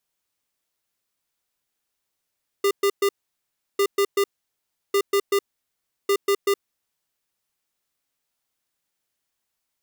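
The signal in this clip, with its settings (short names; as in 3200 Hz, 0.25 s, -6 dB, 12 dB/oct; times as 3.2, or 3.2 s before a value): beep pattern square 400 Hz, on 0.07 s, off 0.12 s, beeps 3, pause 0.70 s, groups 4, -19 dBFS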